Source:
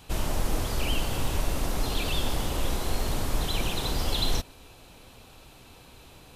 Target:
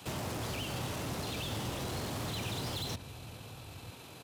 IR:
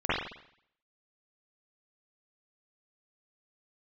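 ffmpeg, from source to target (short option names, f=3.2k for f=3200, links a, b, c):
-filter_complex "[0:a]highpass=f=100:w=0.5412,highpass=f=100:w=1.3066,acrossover=split=150|7600[a][b][c];[a]acompressor=threshold=-40dB:ratio=4[d];[b]acompressor=threshold=-35dB:ratio=4[e];[c]acompressor=threshold=-52dB:ratio=4[f];[d][e][f]amix=inputs=3:normalize=0,atempo=1.5,acrossover=split=140[g][h];[g]aecho=1:1:943:0.531[i];[h]asoftclip=type=hard:threshold=-39dB[j];[i][j]amix=inputs=2:normalize=0,volume=2dB"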